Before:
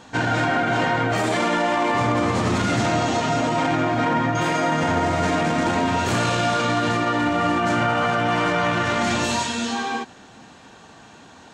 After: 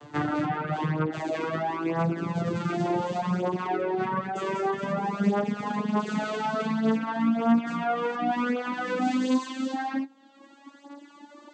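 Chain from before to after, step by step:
vocoder with a gliding carrier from D3, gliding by +12 semitones
flanger 0.35 Hz, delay 8.4 ms, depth 6.2 ms, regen +36%
in parallel at +0.5 dB: downward compressor, threshold −37 dBFS, peak gain reduction 19 dB
on the sum: reverb reduction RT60 2 s

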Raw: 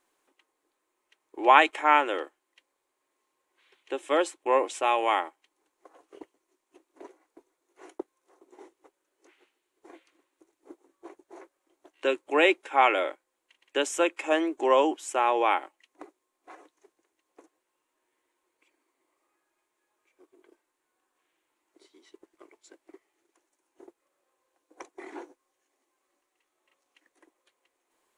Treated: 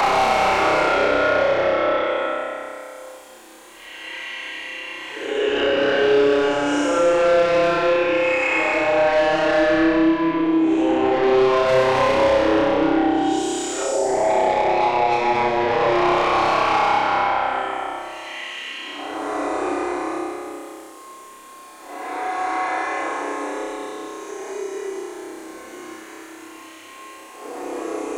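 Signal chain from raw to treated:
extreme stretch with random phases 6.1×, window 0.25 s, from 0:12.80
gain on a spectral selection 0:13.83–0:15.68, 980–4,100 Hz −26 dB
in parallel at −3 dB: downward compressor, threshold −32 dBFS, peak gain reduction 15.5 dB
on the sum: treble cut that deepens with the level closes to 1,900 Hz, closed at −24.5 dBFS
soft clipping −26.5 dBFS, distortion −7 dB
on a send: flutter between parallel walls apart 5.3 metres, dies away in 1.3 s
on the sum: multiband upward and downward compressor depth 70%
level +6.5 dB

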